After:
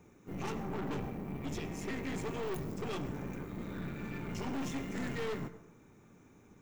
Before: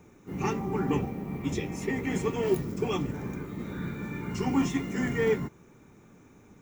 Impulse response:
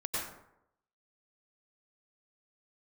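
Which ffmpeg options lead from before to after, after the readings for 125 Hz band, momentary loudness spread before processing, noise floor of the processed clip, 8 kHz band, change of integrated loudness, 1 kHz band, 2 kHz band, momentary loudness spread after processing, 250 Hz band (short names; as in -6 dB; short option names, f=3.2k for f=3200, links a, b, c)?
-8.0 dB, 9 LU, -61 dBFS, -6.5 dB, -9.0 dB, -7.5 dB, -7.5 dB, 4 LU, -9.0 dB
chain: -filter_complex "[0:a]aeval=exprs='(tanh(50.1*val(0)+0.7)-tanh(0.7))/50.1':c=same,asplit=2[a][b];[1:a]atrim=start_sample=2205[c];[b][c]afir=irnorm=-1:irlink=0,volume=-17dB[d];[a][d]amix=inputs=2:normalize=0,volume=-2dB"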